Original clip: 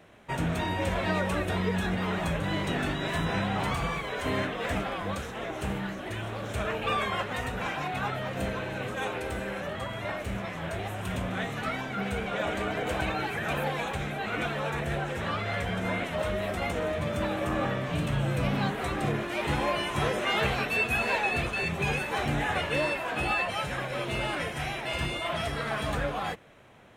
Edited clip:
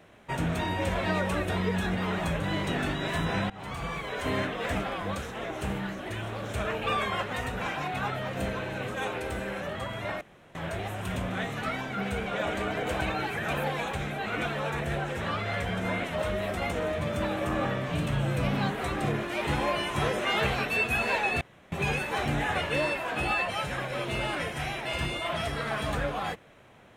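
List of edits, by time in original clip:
0:03.50–0:04.36: fade in equal-power, from −21.5 dB
0:10.21–0:10.55: fill with room tone
0:21.41–0:21.72: fill with room tone

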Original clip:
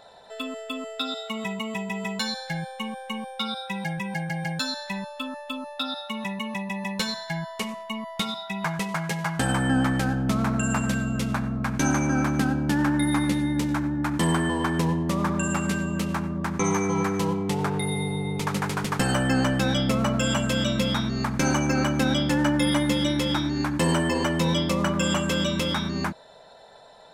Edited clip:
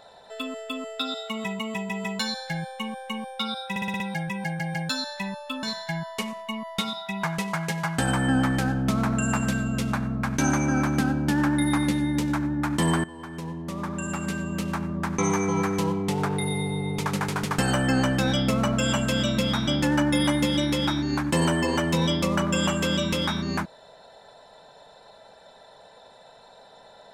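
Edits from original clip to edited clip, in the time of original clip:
0:03.70: stutter 0.06 s, 6 plays
0:05.33–0:07.04: remove
0:14.45–0:16.47: fade in, from −18.5 dB
0:21.08–0:22.14: remove

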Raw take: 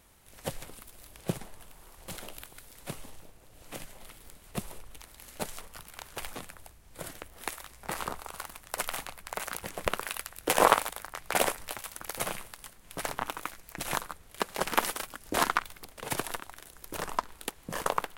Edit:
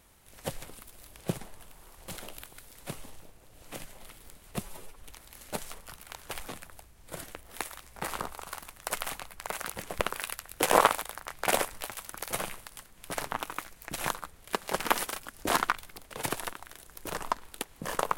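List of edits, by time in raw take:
0:04.62–0:04.88: time-stretch 1.5×

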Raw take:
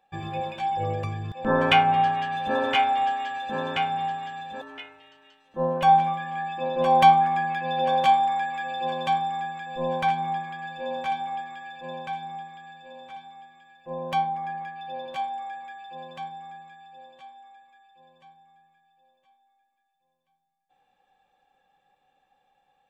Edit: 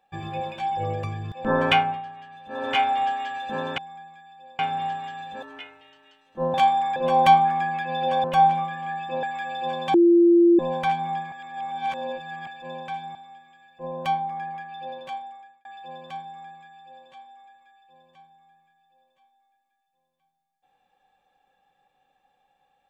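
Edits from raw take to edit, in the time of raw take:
0:01.72–0:02.77: duck −15.5 dB, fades 0.29 s
0:05.73–0:06.72: swap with 0:08.00–0:08.42
0:09.13–0:09.78: beep over 343 Hz −12 dBFS
0:10.51–0:11.66: reverse
0:12.34–0:13.22: remove
0:14.92–0:15.72: fade out
0:16.32–0:17.13: duplicate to 0:03.78

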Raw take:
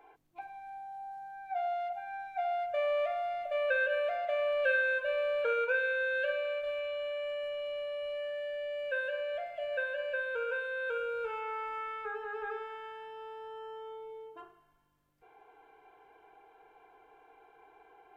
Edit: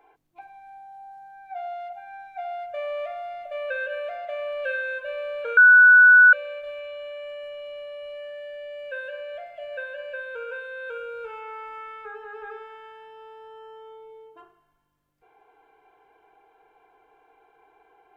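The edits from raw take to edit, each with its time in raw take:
0:05.57–0:06.33: beep over 1,480 Hz −8.5 dBFS

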